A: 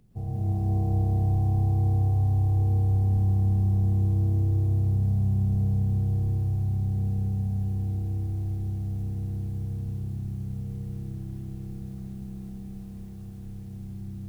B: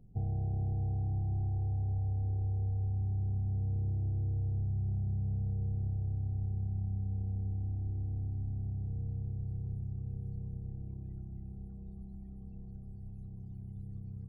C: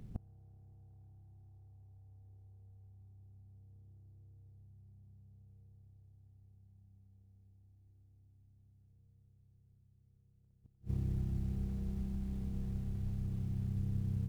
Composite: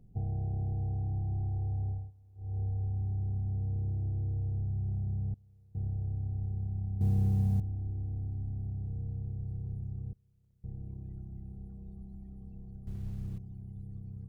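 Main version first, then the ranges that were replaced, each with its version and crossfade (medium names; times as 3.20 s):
B
2.00–2.47 s: from C, crossfade 0.24 s
5.34–5.75 s: from C
7.01–7.60 s: from A
10.13–10.64 s: from C
12.87–13.38 s: from C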